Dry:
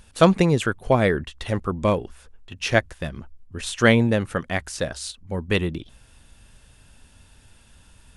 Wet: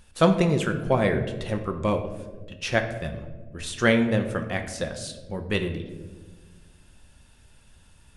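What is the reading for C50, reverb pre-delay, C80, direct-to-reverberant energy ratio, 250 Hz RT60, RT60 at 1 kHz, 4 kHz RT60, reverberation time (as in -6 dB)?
9.0 dB, 5 ms, 11.0 dB, 5.5 dB, 2.0 s, 1.1 s, 0.70 s, 1.4 s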